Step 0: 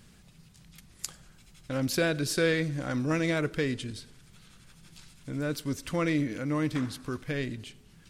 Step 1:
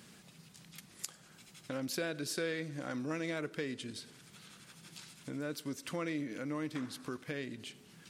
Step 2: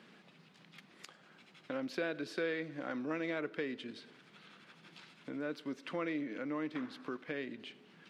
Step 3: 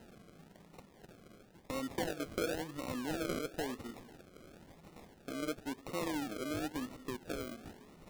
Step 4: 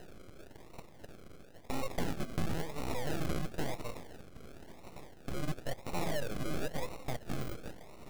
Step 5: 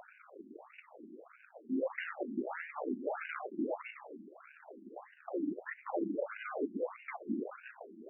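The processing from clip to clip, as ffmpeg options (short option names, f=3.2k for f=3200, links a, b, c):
-af "highpass=190,acompressor=threshold=-46dB:ratio=2,volume=2.5dB"
-filter_complex "[0:a]acrossover=split=180 3800:gain=0.0708 1 0.0631[a][b][c];[a][b][c]amix=inputs=3:normalize=0,volume=1dB"
-af "areverse,acompressor=mode=upward:threshold=-50dB:ratio=2.5,areverse,acrusher=samples=38:mix=1:aa=0.000001:lfo=1:lforange=22.8:lforate=0.97"
-filter_complex "[0:a]asplit=2[a][b];[b]alimiter=level_in=12dB:limit=-24dB:level=0:latency=1:release=34,volume=-12dB,volume=0.5dB[c];[a][c]amix=inputs=2:normalize=0,aeval=exprs='abs(val(0))':c=same,volume=1.5dB"
-af "aeval=exprs='val(0)+0.5*0.00473*sgn(val(0))':c=same,afftfilt=real='re*between(b*sr/1024,250*pow(2100/250,0.5+0.5*sin(2*PI*1.6*pts/sr))/1.41,250*pow(2100/250,0.5+0.5*sin(2*PI*1.6*pts/sr))*1.41)':imag='im*between(b*sr/1024,250*pow(2100/250,0.5+0.5*sin(2*PI*1.6*pts/sr))/1.41,250*pow(2100/250,0.5+0.5*sin(2*PI*1.6*pts/sr))*1.41)':win_size=1024:overlap=0.75,volume=8dB"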